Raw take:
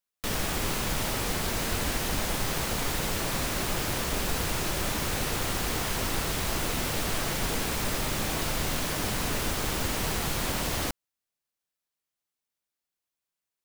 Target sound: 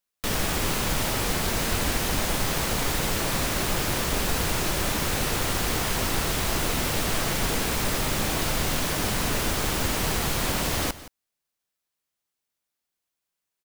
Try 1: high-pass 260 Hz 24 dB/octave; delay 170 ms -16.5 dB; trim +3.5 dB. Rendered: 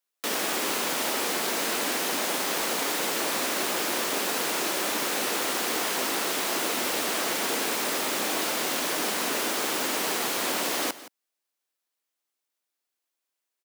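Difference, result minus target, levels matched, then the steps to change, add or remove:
250 Hz band -3.0 dB
remove: high-pass 260 Hz 24 dB/octave

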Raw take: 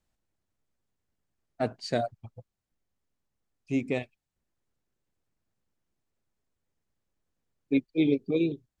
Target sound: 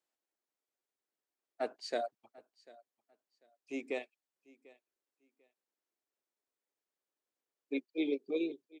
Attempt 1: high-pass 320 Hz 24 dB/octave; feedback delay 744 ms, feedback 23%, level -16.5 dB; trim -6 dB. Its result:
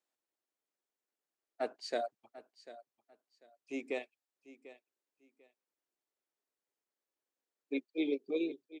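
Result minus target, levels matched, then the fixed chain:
echo-to-direct +6 dB
high-pass 320 Hz 24 dB/octave; feedback delay 744 ms, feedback 23%, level -22.5 dB; trim -6 dB

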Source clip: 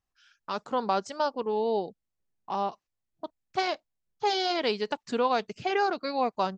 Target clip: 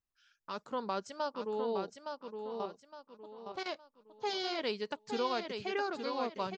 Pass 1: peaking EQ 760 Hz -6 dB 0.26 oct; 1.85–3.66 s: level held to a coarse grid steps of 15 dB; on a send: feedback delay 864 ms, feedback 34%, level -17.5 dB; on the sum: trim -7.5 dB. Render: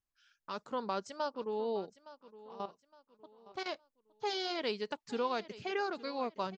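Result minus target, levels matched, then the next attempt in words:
echo-to-direct -11.5 dB
peaking EQ 760 Hz -6 dB 0.26 oct; 1.85–3.66 s: level held to a coarse grid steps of 15 dB; on a send: feedback delay 864 ms, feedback 34%, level -6 dB; on the sum: trim -7.5 dB

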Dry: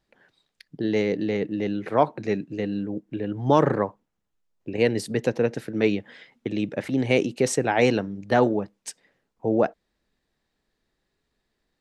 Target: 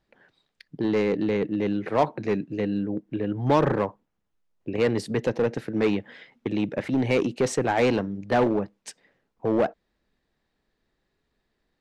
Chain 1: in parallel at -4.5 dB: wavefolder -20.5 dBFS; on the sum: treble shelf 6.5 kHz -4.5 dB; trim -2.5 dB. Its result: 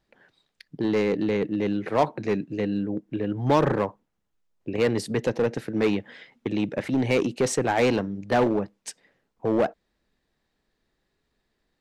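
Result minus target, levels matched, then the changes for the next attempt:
8 kHz band +3.5 dB
change: treble shelf 6.5 kHz -11.5 dB

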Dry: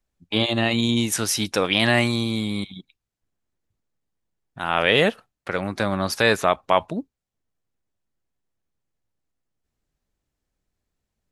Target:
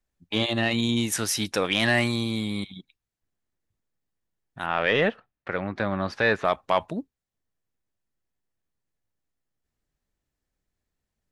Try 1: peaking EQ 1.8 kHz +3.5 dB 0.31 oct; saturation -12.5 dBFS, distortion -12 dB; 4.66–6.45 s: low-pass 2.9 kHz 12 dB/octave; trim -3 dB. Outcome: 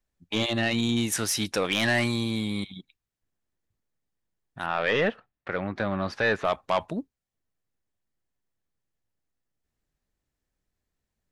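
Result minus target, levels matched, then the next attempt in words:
saturation: distortion +8 dB
peaking EQ 1.8 kHz +3.5 dB 0.31 oct; saturation -5.5 dBFS, distortion -20 dB; 4.66–6.45 s: low-pass 2.9 kHz 12 dB/octave; trim -3 dB

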